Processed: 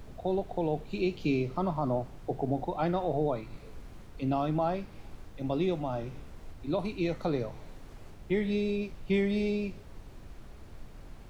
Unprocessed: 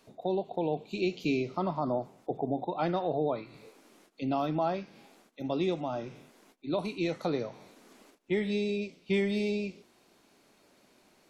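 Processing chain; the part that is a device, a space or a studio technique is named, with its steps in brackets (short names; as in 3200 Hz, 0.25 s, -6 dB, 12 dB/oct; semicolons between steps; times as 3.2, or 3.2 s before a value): car interior (bell 120 Hz +7 dB 0.8 oct; high shelf 3900 Hz -6.5 dB; brown noise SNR 12 dB)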